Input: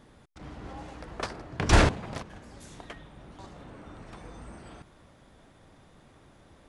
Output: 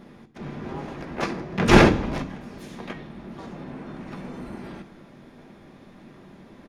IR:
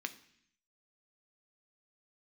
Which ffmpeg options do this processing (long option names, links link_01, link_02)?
-filter_complex "[0:a]asplit=4[link_01][link_02][link_03][link_04];[link_02]asetrate=22050,aresample=44100,atempo=2,volume=-3dB[link_05];[link_03]asetrate=52444,aresample=44100,atempo=0.840896,volume=-5dB[link_06];[link_04]asetrate=66075,aresample=44100,atempo=0.66742,volume=-11dB[link_07];[link_01][link_05][link_06][link_07]amix=inputs=4:normalize=0,tiltshelf=frequency=850:gain=5[link_08];[1:a]atrim=start_sample=2205[link_09];[link_08][link_09]afir=irnorm=-1:irlink=0,volume=6.5dB"